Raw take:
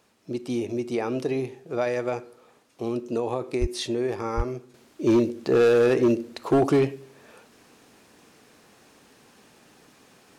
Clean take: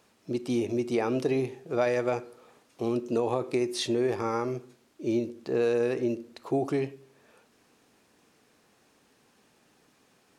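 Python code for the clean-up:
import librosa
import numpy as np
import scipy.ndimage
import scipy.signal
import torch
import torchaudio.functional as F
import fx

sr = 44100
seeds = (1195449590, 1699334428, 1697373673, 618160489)

y = fx.fix_declip(x, sr, threshold_db=-14.0)
y = fx.highpass(y, sr, hz=140.0, slope=24, at=(3.6, 3.72), fade=0.02)
y = fx.highpass(y, sr, hz=140.0, slope=24, at=(4.36, 4.48), fade=0.02)
y = fx.fix_level(y, sr, at_s=4.74, step_db=-9.0)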